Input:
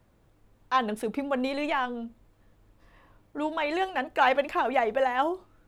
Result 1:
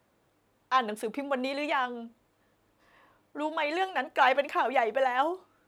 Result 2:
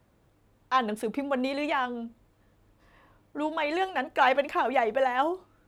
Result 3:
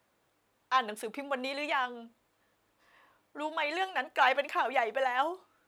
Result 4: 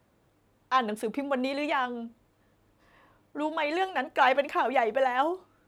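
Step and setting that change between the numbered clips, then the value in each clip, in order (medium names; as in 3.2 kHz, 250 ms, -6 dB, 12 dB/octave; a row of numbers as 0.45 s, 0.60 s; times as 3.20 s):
high-pass, cutoff frequency: 370 Hz, 56 Hz, 960 Hz, 150 Hz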